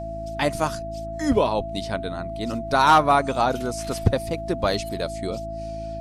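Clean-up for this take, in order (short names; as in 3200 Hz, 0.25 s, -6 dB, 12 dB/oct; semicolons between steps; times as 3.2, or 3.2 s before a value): de-hum 54.3 Hz, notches 6; notch 670 Hz, Q 30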